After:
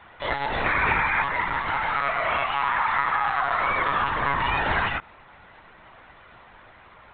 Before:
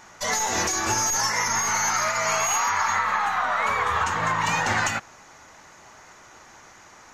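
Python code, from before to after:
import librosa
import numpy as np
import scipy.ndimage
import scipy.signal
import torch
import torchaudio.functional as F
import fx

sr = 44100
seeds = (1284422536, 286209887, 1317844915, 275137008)

y = fx.spec_paint(x, sr, seeds[0], shape='noise', start_s=0.65, length_s=0.58, low_hz=830.0, high_hz=2500.0, level_db=-24.0)
y = fx.lpc_monotone(y, sr, seeds[1], pitch_hz=140.0, order=16)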